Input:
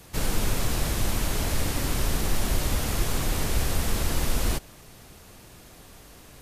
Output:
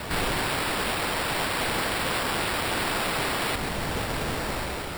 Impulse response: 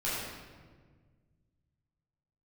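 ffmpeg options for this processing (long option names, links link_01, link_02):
-filter_complex "[0:a]dynaudnorm=framelen=130:gausssize=9:maxgain=8dB,highshelf=frequency=2700:width_type=q:width=1.5:gain=10.5,asplit=2[link_01][link_02];[link_02]alimiter=limit=-16.5dB:level=0:latency=1:release=102,volume=2.5dB[link_03];[link_01][link_03]amix=inputs=2:normalize=0,asetrate=56889,aresample=44100,aeval=exprs='0.112*(abs(mod(val(0)/0.112+3,4)-2)-1)':channel_layout=same,asplit=2[link_04][link_05];[link_05]highpass=frequency=720:poles=1,volume=12dB,asoftclip=type=tanh:threshold=-23.5dB[link_06];[link_04][link_06]amix=inputs=2:normalize=0,lowpass=frequency=1200:poles=1,volume=-6dB,acrusher=samples=7:mix=1:aa=0.000001,volume=8.5dB"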